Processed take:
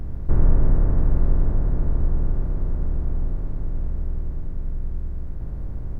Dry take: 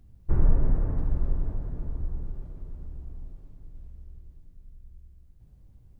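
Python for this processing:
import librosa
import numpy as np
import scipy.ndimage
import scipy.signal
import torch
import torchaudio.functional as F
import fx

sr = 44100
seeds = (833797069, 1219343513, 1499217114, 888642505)

y = fx.bin_compress(x, sr, power=0.4)
y = y * librosa.db_to_amplitude(2.0)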